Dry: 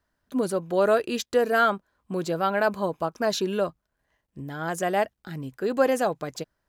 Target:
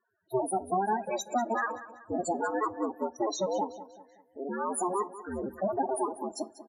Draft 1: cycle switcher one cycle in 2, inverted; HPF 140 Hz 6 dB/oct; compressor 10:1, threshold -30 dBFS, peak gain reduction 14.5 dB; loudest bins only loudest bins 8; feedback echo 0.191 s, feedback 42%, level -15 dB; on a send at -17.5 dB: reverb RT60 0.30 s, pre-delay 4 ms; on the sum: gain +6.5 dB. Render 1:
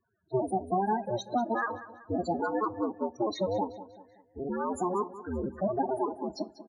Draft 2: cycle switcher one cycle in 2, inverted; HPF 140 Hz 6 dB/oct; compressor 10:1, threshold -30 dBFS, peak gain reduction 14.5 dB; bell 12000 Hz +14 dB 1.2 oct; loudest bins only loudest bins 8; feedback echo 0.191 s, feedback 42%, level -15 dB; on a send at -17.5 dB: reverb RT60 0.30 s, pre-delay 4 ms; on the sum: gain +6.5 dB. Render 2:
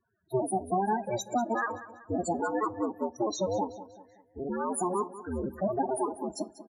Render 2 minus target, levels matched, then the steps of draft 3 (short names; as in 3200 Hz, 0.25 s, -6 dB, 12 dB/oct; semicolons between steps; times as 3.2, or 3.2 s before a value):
125 Hz band +6.0 dB
cycle switcher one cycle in 2, inverted; HPF 290 Hz 6 dB/oct; compressor 10:1, threshold -30 dBFS, peak gain reduction 14 dB; bell 12000 Hz +14 dB 1.2 oct; loudest bins only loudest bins 8; feedback echo 0.191 s, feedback 42%, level -15 dB; on a send at -17.5 dB: reverb RT60 0.30 s, pre-delay 4 ms; on the sum: gain +6.5 dB